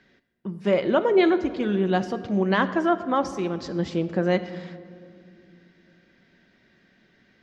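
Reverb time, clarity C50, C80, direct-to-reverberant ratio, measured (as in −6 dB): 2.3 s, 13.0 dB, 14.0 dB, 9.5 dB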